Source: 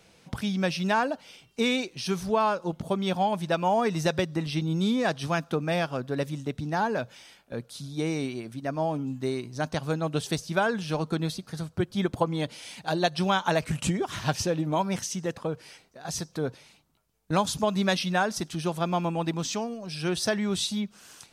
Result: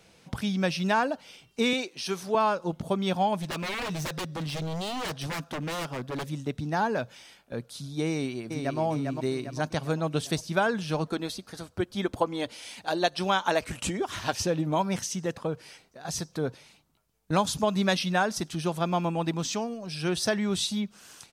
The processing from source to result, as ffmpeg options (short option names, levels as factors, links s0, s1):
-filter_complex "[0:a]asettb=1/sr,asplit=3[s0][s1][s2];[s0]atrim=end=1.734[s3];[s1]atrim=start=1.73:end=2.35,asetpts=PTS-STARTPTS,afade=t=in:d=0.004:c=qsin,afade=t=out:st=0.616:d=0.004:c=qsin,highpass=280[s4];[s2]atrim=start=2.346[s5];[s3][s4]acrossfade=d=0.004:c1=hsin:c2=qsin[s6];[s6][s5]acrossfade=d=0.004:c1=qsin:c2=hsin,asettb=1/sr,asplit=3[s7][s8][s9];[s7]atrim=end=3.364[s10];[s8]atrim=start=3.36:end=6.27,asetpts=PTS-STARTPTS,afade=t=in:d=0.004:c=qsin,afade=t=out:st=2.906:d=0.004:c=qsin,aeval=exprs='0.0422*(abs(mod(val(0)/0.0422+3,4)-2)-1)':c=same[s11];[s9]atrim=start=6.266[s12];[s10][s11]acrossfade=d=0.004:c1=hsin:c2=qsin[s13];[s13][s12]acrossfade=d=0.004:c1=qsin:c2=hsin,asplit=2[s14][s15];[s15]afade=t=in:st=8.1:d=0.01,afade=t=out:st=8.8:d=0.01,aecho=0:1:400|800|1200|1600|2000|2400:0.595662|0.297831|0.148916|0.0744578|0.0372289|0.0186144[s16];[s14][s16]amix=inputs=2:normalize=0,asettb=1/sr,asplit=3[s17][s18][s19];[s17]atrim=end=11.074[s20];[s18]atrim=start=11.07:end=14.45,asetpts=PTS-STARTPTS,afade=t=in:d=0.004:c=qsin,afade=t=out:st=3.376:d=0.004:c=qsin,equalizer=f=150:t=o:w=0.45:g=-15[s21];[s19]atrim=start=14.446[s22];[s20][s21]acrossfade=d=0.004:c1=hsin:c2=qsin[s23];[s23][s22]acrossfade=d=0.004:c1=qsin:c2=hsin"